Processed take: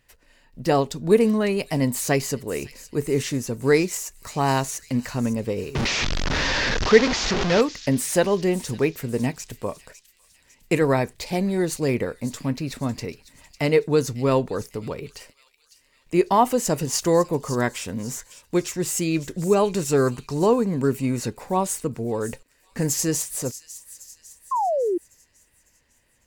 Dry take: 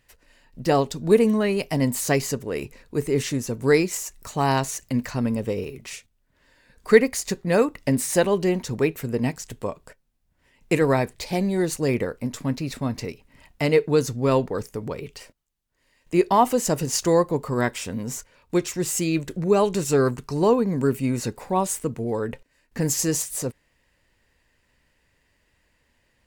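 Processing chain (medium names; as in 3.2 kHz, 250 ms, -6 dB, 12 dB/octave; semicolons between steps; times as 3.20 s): 5.75–7.61 s: one-bit delta coder 32 kbps, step -16.5 dBFS; feedback echo behind a high-pass 552 ms, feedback 48%, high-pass 3.4 kHz, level -12.5 dB; 24.51–24.98 s: painted sound fall 330–1100 Hz -22 dBFS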